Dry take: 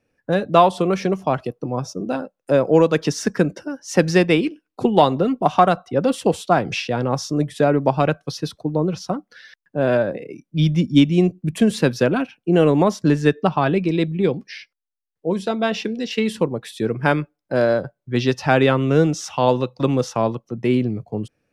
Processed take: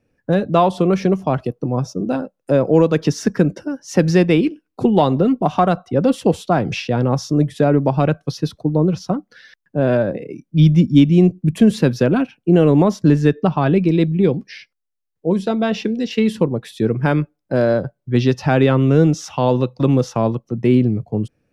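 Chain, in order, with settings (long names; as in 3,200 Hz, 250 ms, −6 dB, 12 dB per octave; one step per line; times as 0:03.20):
dynamic equaliser 8,500 Hz, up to −4 dB, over −52 dBFS, Q 3.7
in parallel at +1 dB: brickwall limiter −9.5 dBFS, peak gain reduction 7.5 dB
on the sum: low-shelf EQ 400 Hz +8.5 dB
level −7.5 dB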